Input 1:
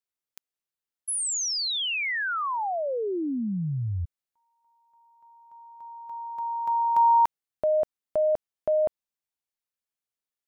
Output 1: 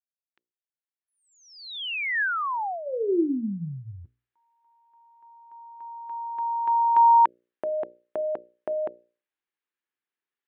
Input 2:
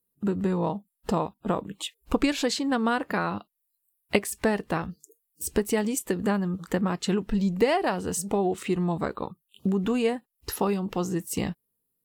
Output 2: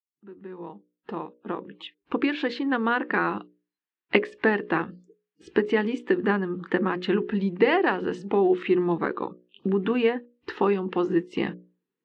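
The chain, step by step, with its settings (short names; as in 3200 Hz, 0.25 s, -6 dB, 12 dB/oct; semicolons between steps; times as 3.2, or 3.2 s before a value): opening faded in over 3.45 s; speaker cabinet 230–3200 Hz, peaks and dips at 350 Hz +7 dB, 630 Hz -9 dB, 1700 Hz +5 dB; notches 60/120/180/240/300/360/420/480/540/600 Hz; gain +3.5 dB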